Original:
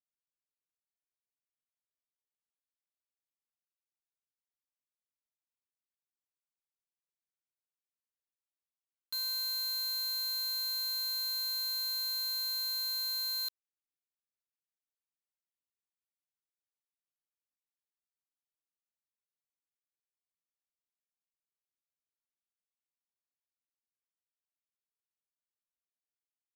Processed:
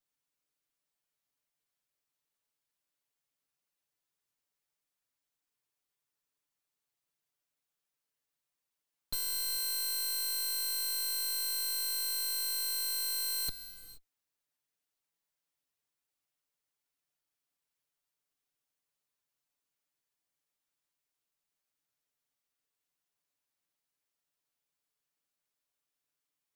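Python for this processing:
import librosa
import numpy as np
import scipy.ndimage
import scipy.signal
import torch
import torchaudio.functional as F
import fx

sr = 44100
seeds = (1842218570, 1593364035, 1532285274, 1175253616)

p1 = fx.lower_of_two(x, sr, delay_ms=6.9)
p2 = 10.0 ** (-39.0 / 20.0) * (np.abs((p1 / 10.0 ** (-39.0 / 20.0) + 3.0) % 4.0 - 2.0) - 1.0)
p3 = p1 + F.gain(torch.from_numpy(p2), -6.0).numpy()
p4 = fx.rev_gated(p3, sr, seeds[0], gate_ms=500, shape='flat', drr_db=10.0)
y = F.gain(torch.from_numpy(p4), 4.5).numpy()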